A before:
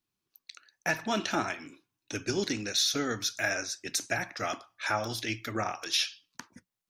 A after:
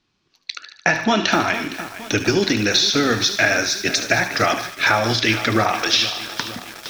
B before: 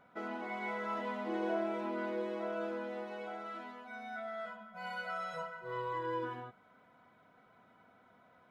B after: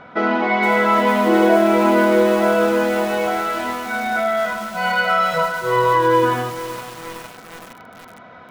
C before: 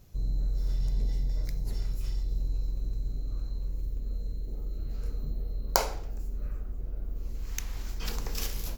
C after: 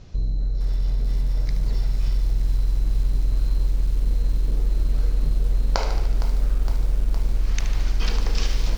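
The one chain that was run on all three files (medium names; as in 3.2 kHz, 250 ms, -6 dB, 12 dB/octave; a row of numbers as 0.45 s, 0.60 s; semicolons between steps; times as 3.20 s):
in parallel at -3.5 dB: saturation -15.5 dBFS; on the sum: compression 10:1, threshold -27 dBFS; low-pass 5.5 kHz 24 dB/octave; de-hum 64.29 Hz, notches 16; on a send: feedback echo behind a high-pass 74 ms, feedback 66%, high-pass 1.5 kHz, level -10.5 dB; on the sum: bit-crushed delay 462 ms, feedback 80%, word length 7-bit, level -13 dB; peak normalisation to -3 dBFS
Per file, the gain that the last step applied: +14.0 dB, +18.0 dB, +7.5 dB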